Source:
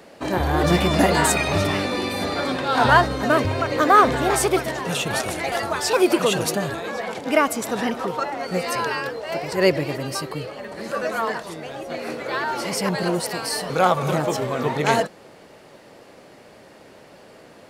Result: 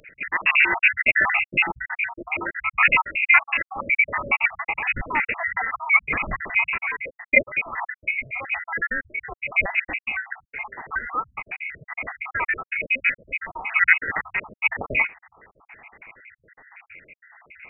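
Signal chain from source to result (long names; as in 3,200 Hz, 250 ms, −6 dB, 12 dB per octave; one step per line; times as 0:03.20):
time-frequency cells dropped at random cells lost 70%
voice inversion scrambler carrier 2,700 Hz
level +4.5 dB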